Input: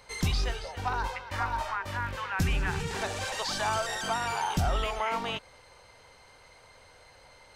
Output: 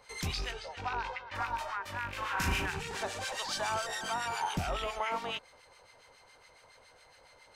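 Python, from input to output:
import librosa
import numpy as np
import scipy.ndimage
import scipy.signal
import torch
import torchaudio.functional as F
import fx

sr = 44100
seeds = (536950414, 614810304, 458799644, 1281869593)

y = fx.rattle_buzz(x, sr, strikes_db=-33.0, level_db=-28.0)
y = fx.lowpass(y, sr, hz=fx.line((0.51, 8700.0), (1.34, 3600.0)), slope=12, at=(0.51, 1.34), fade=0.02)
y = fx.room_flutter(y, sr, wall_m=6.5, rt60_s=1.2, at=(2.09, 2.66))
y = fx.harmonic_tremolo(y, sr, hz=7.2, depth_pct=70, crossover_hz=1300.0)
y = fx.low_shelf(y, sr, hz=210.0, db=-8.0)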